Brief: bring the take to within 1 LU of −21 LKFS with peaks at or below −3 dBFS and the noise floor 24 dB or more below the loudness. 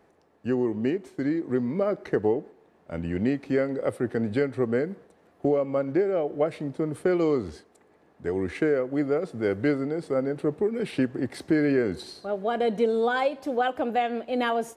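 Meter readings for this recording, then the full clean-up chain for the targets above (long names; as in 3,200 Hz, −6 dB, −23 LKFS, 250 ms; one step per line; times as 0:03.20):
integrated loudness −27.0 LKFS; sample peak −13.0 dBFS; target loudness −21.0 LKFS
→ level +6 dB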